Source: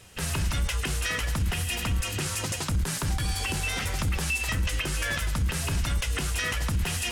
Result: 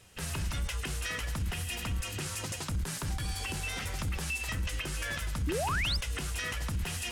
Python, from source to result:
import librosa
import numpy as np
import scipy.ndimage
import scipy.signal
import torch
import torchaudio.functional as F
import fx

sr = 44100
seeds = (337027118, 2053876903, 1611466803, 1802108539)

y = fx.spec_paint(x, sr, seeds[0], shape='rise', start_s=5.47, length_s=0.5, low_hz=270.0, high_hz=5400.0, level_db=-26.0)
y = y * librosa.db_to_amplitude(-6.5)